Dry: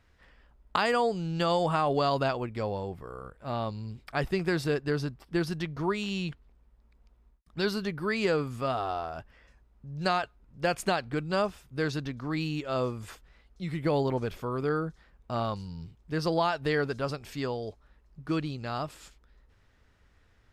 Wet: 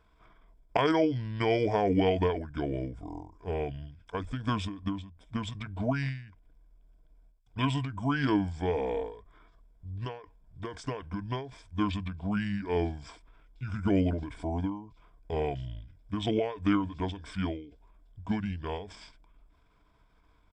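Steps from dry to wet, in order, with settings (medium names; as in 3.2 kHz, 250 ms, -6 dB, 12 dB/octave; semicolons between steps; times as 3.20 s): rippled EQ curve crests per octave 1.7, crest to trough 9 dB; pitch shift -7 st; endings held to a fixed fall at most 100 dB/s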